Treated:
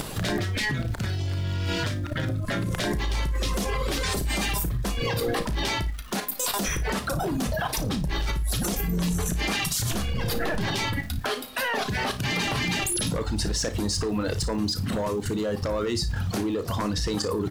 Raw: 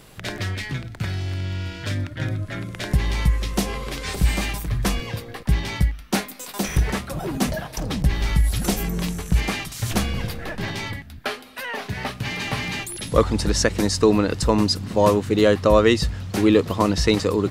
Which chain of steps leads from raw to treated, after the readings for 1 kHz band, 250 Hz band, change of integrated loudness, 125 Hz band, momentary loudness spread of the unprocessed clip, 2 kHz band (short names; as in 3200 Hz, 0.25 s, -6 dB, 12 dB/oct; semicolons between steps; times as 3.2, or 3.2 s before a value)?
-3.5 dB, -5.5 dB, -4.0 dB, -4.0 dB, 12 LU, -1.0 dB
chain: reverb removal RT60 0.75 s; bell 2200 Hz -4.5 dB 0.65 oct; compressor 5:1, threshold -31 dBFS, peak gain reduction 18 dB; sine folder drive 8 dB, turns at -15.5 dBFS; limiter -25 dBFS, peak gain reduction 10.5 dB; crackle 570/s -48 dBFS; level quantiser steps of 9 dB; doubler 34 ms -12 dB; on a send: flutter echo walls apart 9.8 m, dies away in 0.24 s; on the sum: gain +9 dB